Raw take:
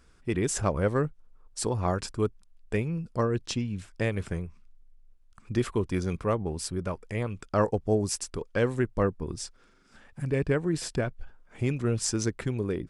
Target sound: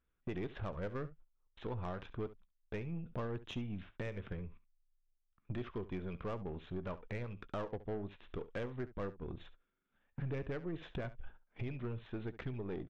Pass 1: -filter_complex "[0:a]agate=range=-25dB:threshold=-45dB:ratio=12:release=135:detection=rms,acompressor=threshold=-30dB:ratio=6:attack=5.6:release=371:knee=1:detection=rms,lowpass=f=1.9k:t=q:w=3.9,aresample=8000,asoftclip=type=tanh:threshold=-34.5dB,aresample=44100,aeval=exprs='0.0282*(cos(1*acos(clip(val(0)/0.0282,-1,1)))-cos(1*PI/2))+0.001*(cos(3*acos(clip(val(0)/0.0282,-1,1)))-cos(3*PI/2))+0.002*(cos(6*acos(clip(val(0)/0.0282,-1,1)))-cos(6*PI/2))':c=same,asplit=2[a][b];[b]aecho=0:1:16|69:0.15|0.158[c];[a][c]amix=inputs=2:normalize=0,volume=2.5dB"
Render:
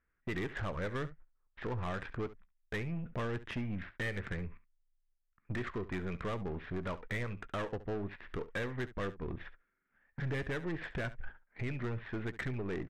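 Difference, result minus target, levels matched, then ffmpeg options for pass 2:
2000 Hz band +6.5 dB; compressor: peak gain reduction -5 dB
-filter_complex "[0:a]agate=range=-25dB:threshold=-45dB:ratio=12:release=135:detection=rms,acompressor=threshold=-36dB:ratio=6:attack=5.6:release=371:knee=1:detection=rms,aresample=8000,asoftclip=type=tanh:threshold=-34.5dB,aresample=44100,aeval=exprs='0.0282*(cos(1*acos(clip(val(0)/0.0282,-1,1)))-cos(1*PI/2))+0.001*(cos(3*acos(clip(val(0)/0.0282,-1,1)))-cos(3*PI/2))+0.002*(cos(6*acos(clip(val(0)/0.0282,-1,1)))-cos(6*PI/2))':c=same,asplit=2[a][b];[b]aecho=0:1:16|69:0.15|0.158[c];[a][c]amix=inputs=2:normalize=0,volume=2.5dB"

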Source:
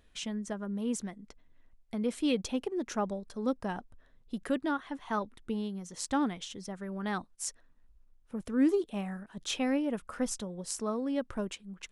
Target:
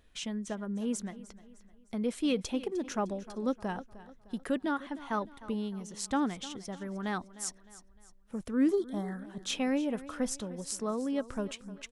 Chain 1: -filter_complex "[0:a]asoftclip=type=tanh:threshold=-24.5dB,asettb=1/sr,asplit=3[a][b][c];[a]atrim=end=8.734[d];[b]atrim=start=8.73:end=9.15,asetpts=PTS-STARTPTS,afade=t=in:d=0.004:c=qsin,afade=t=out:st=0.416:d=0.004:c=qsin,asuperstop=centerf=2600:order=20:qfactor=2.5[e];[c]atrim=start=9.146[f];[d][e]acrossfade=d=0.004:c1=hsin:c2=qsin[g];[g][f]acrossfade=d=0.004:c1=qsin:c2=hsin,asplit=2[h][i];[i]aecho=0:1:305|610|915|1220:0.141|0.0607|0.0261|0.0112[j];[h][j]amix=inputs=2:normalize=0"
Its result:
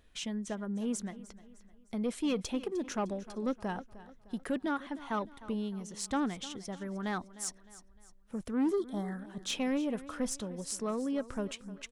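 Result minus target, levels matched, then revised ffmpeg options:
soft clip: distortion +16 dB
-filter_complex "[0:a]asoftclip=type=tanh:threshold=-14.5dB,asettb=1/sr,asplit=3[a][b][c];[a]atrim=end=8.734[d];[b]atrim=start=8.73:end=9.15,asetpts=PTS-STARTPTS,afade=t=in:d=0.004:c=qsin,afade=t=out:st=0.416:d=0.004:c=qsin,asuperstop=centerf=2600:order=20:qfactor=2.5[e];[c]atrim=start=9.146[f];[d][e]acrossfade=d=0.004:c1=hsin:c2=qsin[g];[g][f]acrossfade=d=0.004:c1=qsin:c2=hsin,asplit=2[h][i];[i]aecho=0:1:305|610|915|1220:0.141|0.0607|0.0261|0.0112[j];[h][j]amix=inputs=2:normalize=0"

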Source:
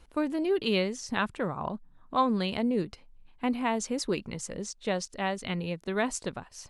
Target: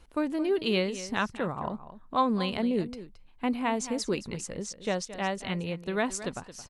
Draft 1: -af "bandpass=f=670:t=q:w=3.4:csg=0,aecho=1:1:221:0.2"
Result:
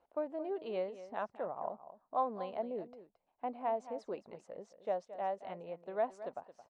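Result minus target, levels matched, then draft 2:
500 Hz band +3.0 dB
-af "aecho=1:1:221:0.2"

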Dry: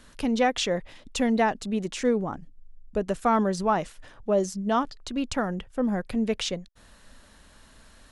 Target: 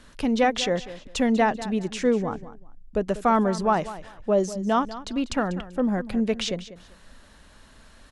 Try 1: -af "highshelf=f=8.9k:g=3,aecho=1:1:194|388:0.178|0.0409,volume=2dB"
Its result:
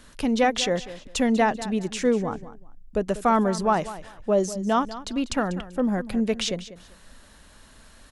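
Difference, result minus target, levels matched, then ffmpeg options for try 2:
8000 Hz band +3.5 dB
-af "highshelf=f=8.9k:g=-7.5,aecho=1:1:194|388:0.178|0.0409,volume=2dB"

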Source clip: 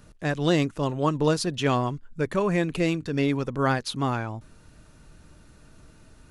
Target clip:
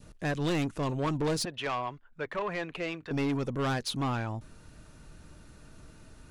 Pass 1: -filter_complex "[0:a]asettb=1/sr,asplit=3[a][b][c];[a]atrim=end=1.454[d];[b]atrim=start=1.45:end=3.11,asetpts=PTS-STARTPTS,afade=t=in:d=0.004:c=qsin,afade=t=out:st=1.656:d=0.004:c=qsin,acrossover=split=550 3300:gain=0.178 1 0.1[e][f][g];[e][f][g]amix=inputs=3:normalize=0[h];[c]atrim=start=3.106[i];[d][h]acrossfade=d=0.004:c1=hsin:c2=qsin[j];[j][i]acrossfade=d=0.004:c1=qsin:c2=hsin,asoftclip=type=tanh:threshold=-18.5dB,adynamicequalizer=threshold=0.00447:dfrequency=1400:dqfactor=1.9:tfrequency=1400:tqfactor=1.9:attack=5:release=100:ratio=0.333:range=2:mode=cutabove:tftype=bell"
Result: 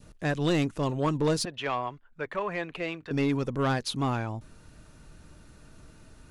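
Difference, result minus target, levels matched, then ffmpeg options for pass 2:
soft clip: distortion -6 dB
-filter_complex "[0:a]asettb=1/sr,asplit=3[a][b][c];[a]atrim=end=1.454[d];[b]atrim=start=1.45:end=3.11,asetpts=PTS-STARTPTS,afade=t=in:d=0.004:c=qsin,afade=t=out:st=1.656:d=0.004:c=qsin,acrossover=split=550 3300:gain=0.178 1 0.1[e][f][g];[e][f][g]amix=inputs=3:normalize=0[h];[c]atrim=start=3.106[i];[d][h]acrossfade=d=0.004:c1=hsin:c2=qsin[j];[j][i]acrossfade=d=0.004:c1=qsin:c2=hsin,asoftclip=type=tanh:threshold=-25dB,adynamicequalizer=threshold=0.00447:dfrequency=1400:dqfactor=1.9:tfrequency=1400:tqfactor=1.9:attack=5:release=100:ratio=0.333:range=2:mode=cutabove:tftype=bell"

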